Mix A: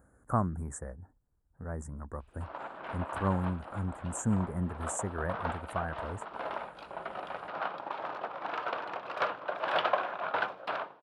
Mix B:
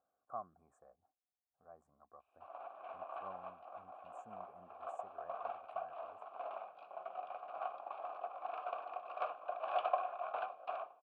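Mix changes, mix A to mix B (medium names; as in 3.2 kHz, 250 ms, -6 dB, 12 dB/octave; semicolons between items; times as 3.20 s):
speech -7.0 dB; master: add vowel filter a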